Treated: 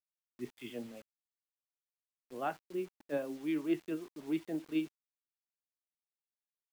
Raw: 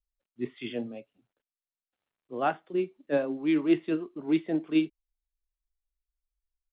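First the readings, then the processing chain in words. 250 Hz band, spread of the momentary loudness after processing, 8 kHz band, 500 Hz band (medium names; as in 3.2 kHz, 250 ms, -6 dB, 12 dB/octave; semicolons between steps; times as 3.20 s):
-9.0 dB, 12 LU, no reading, -9.0 dB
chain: bit crusher 8-bit; trim -9 dB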